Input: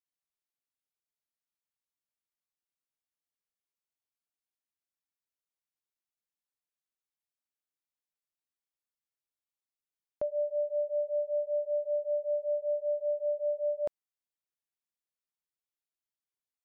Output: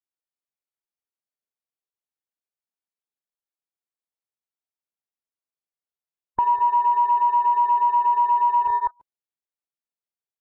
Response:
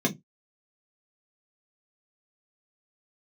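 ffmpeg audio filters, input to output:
-af "afftfilt=real='real(if(between(b,1,1008),(2*floor((b-1)/24)+1)*24-b,b),0)':imag='imag(if(between(b,1,1008),(2*floor((b-1)/24)+1)*24-b,b),0)*if(between(b,1,1008),-1,1)':win_size=2048:overlap=0.75,acontrast=81,aecho=1:1:55|319|534|545:0.473|0.668|0.126|0.133,afwtdn=0.0158,equalizer=frequency=570:width_type=o:width=2.9:gain=7.5,acompressor=threshold=-16dB:ratio=4,adynamicequalizer=threshold=0.00251:dfrequency=210:dqfactor=2.3:tfrequency=210:tqfactor=2.3:attack=5:release=100:ratio=0.375:range=2.5:mode=cutabove:tftype=bell,atempo=1.6"

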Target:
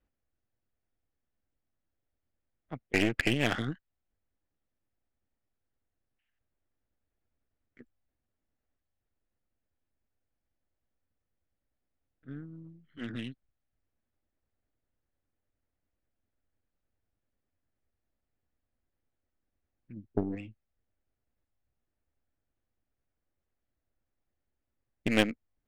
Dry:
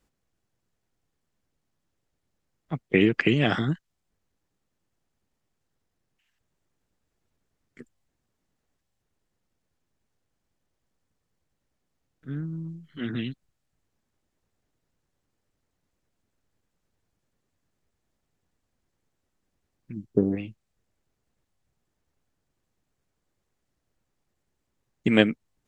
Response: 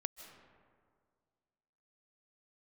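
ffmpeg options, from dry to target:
-af "equalizer=frequency=160:width_type=o:width=0.67:gain=-10,equalizer=frequency=400:width_type=o:width=0.67:gain=-5,equalizer=frequency=1000:width_type=o:width=0.67:gain=-6,aeval=exprs='0.631*(cos(1*acos(clip(val(0)/0.631,-1,1)))-cos(1*PI/2))+0.0631*(cos(8*acos(clip(val(0)/0.631,-1,1)))-cos(8*PI/2))':channel_layout=same,adynamicsmooth=sensitivity=4.5:basefreq=2500,volume=-4dB"

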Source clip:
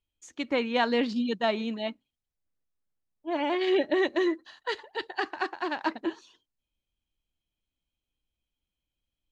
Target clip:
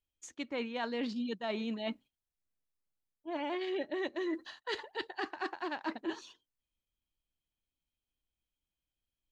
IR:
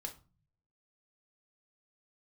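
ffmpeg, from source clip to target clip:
-af "agate=range=-9dB:threshold=-54dB:ratio=16:detection=peak,areverse,acompressor=threshold=-38dB:ratio=6,areverse,volume=3.5dB"

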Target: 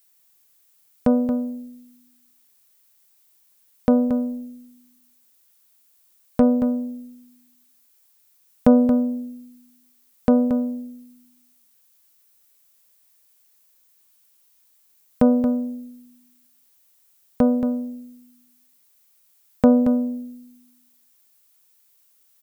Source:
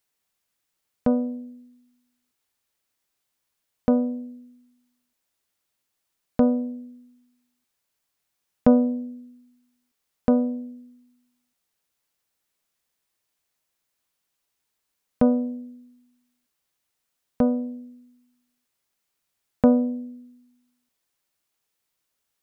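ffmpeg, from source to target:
ffmpeg -i in.wav -filter_complex "[0:a]asettb=1/sr,asplit=3[link_01][link_02][link_03];[link_01]atrim=end=4.084[link_04];[link_02]atrim=start=4.08:end=6.42,asetpts=PTS-STARTPTS,afade=type=in:duration=0.004:curve=qsin,afade=type=out:start_time=2.336:duration=0.004:curve=qsin,aeval=exprs='0.422*(cos(1*acos(clip(val(0)/0.422,-1,1)))-cos(1*PI/2))+0.0133*(cos(4*acos(clip(val(0)/0.422,-1,1)))-cos(4*PI/2))':channel_layout=same[link_05];[link_03]atrim=start=6.416[link_06];[link_04][link_05]acrossfade=duration=0.004:curve1=hsin:curve2=qsin[link_07];[link_07][link_06]acrossfade=duration=0.004:curve1=qsin:curve2=hsin,asplit=2[link_08][link_09];[link_09]alimiter=limit=-17dB:level=0:latency=1:release=283,volume=-1.5dB[link_10];[link_08][link_10]amix=inputs=2:normalize=0,aemphasis=mode=production:type=50kf,aecho=1:1:227:0.355" out.wav

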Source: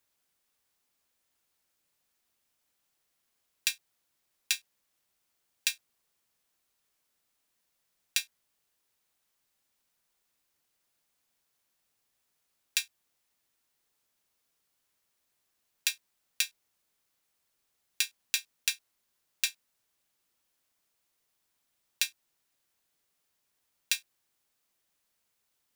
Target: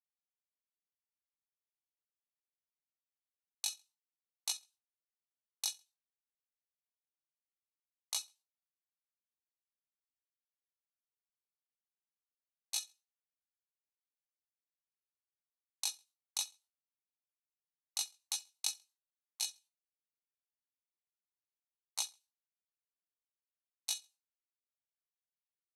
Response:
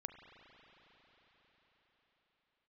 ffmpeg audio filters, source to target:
-filter_complex "[0:a]bandreject=frequency=6100:width=14,agate=range=-33dB:threshold=-55dB:ratio=3:detection=peak,afftdn=noise_reduction=21:noise_floor=-63,acompressor=threshold=-33dB:ratio=4,aresample=16000,asoftclip=type=hard:threshold=-24.5dB,aresample=44100,highpass=frequency=520:width_type=q:width=4.9,asetrate=70004,aresample=44100,atempo=0.629961,asplit=2[link_01][link_02];[link_02]asoftclip=type=tanh:threshold=-36dB,volume=-9dB[link_03];[link_01][link_03]amix=inputs=2:normalize=0,flanger=delay=16:depth=4.9:speed=0.46,aecho=1:1:67|134:0.0708|0.0219,volume=3.5dB"

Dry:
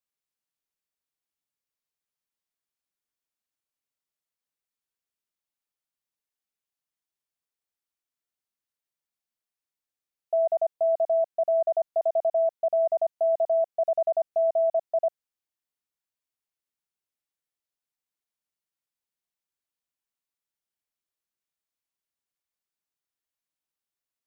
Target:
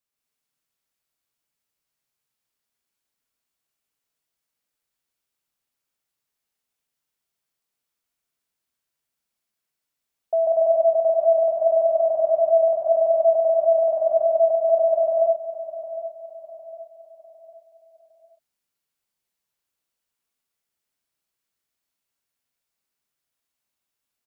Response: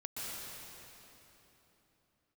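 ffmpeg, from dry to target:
-filter_complex "[0:a]aecho=1:1:756|1512|2268|3024:0.224|0.0918|0.0376|0.0154[link_01];[1:a]atrim=start_sample=2205,afade=type=out:start_time=0.33:duration=0.01,atrim=end_sample=14994[link_02];[link_01][link_02]afir=irnorm=-1:irlink=0,volume=8.5dB"

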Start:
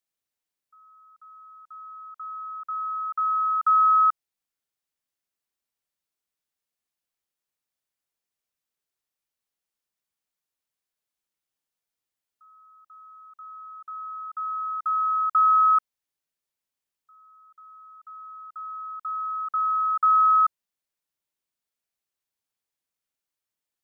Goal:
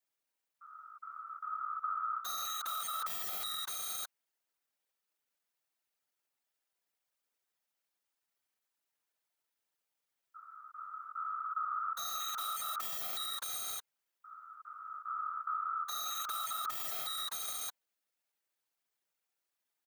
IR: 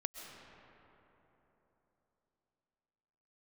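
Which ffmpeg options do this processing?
-filter_complex "[0:a]aecho=1:1:749:0.398,aeval=exprs='(mod(33.5*val(0)+1,2)-1)/33.5':channel_layout=same,afftfilt=real='hypot(re,im)*cos(2*PI*random(0))':imag='hypot(re,im)*sin(2*PI*random(1))':win_size=512:overlap=0.75,alimiter=level_in=10.5dB:limit=-24dB:level=0:latency=1:release=19,volume=-10.5dB,bandreject=frequency=1100:width=15,adynamicequalizer=threshold=0.00355:dfrequency=1200:dqfactor=4.4:tfrequency=1200:tqfactor=4.4:attack=5:release=100:ratio=0.375:range=2:mode=boostabove:tftype=bell,atempo=1.2,aemphasis=mode=production:type=50kf,asplit=2[link_01][link_02];[link_02]highpass=frequency=720:poles=1,volume=13dB,asoftclip=type=tanh:threshold=-9dB[link_03];[link_01][link_03]amix=inputs=2:normalize=0,lowpass=frequency=1300:poles=1,volume=-6dB,acompressor=threshold=-37dB:ratio=4,volume=3dB"

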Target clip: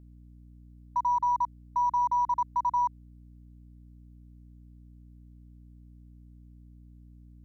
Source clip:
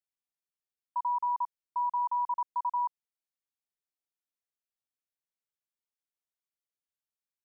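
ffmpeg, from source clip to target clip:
ffmpeg -i in.wav -af "aeval=exprs='0.0531*(cos(1*acos(clip(val(0)/0.0531,-1,1)))-cos(1*PI/2))+0.000841*(cos(6*acos(clip(val(0)/0.0531,-1,1)))-cos(6*PI/2))':channel_layout=same,aeval=exprs='val(0)+0.002*(sin(2*PI*60*n/s)+sin(2*PI*2*60*n/s)/2+sin(2*PI*3*60*n/s)/3+sin(2*PI*4*60*n/s)/4+sin(2*PI*5*60*n/s)/5)':channel_layout=same,volume=4dB" out.wav

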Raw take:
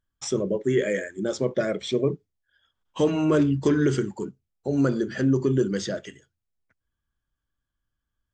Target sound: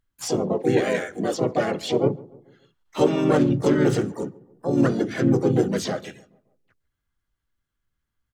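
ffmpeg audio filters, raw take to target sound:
ffmpeg -i in.wav -filter_complex "[0:a]asplit=2[link_01][link_02];[link_02]adelay=145,lowpass=frequency=1100:poles=1,volume=-21dB,asplit=2[link_03][link_04];[link_04]adelay=145,lowpass=frequency=1100:poles=1,volume=0.52,asplit=2[link_05][link_06];[link_06]adelay=145,lowpass=frequency=1100:poles=1,volume=0.52,asplit=2[link_07][link_08];[link_08]adelay=145,lowpass=frequency=1100:poles=1,volume=0.52[link_09];[link_01][link_03][link_05][link_07][link_09]amix=inputs=5:normalize=0,asplit=4[link_10][link_11][link_12][link_13];[link_11]asetrate=37084,aresample=44100,atempo=1.18921,volume=-5dB[link_14];[link_12]asetrate=55563,aresample=44100,atempo=0.793701,volume=-4dB[link_15];[link_13]asetrate=88200,aresample=44100,atempo=0.5,volume=-14dB[link_16];[link_10][link_14][link_15][link_16]amix=inputs=4:normalize=0" out.wav

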